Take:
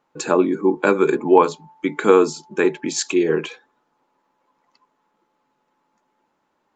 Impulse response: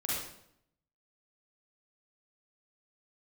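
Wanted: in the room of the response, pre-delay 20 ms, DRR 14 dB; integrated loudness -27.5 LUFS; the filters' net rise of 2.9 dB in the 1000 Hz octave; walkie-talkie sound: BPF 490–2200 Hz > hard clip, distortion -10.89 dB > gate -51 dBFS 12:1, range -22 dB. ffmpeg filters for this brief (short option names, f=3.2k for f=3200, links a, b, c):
-filter_complex "[0:a]equalizer=f=1k:t=o:g=4,asplit=2[a][b];[1:a]atrim=start_sample=2205,adelay=20[c];[b][c]afir=irnorm=-1:irlink=0,volume=-19dB[d];[a][d]amix=inputs=2:normalize=0,highpass=490,lowpass=2.2k,asoftclip=type=hard:threshold=-11dB,agate=range=-22dB:threshold=-51dB:ratio=12,volume=-5dB"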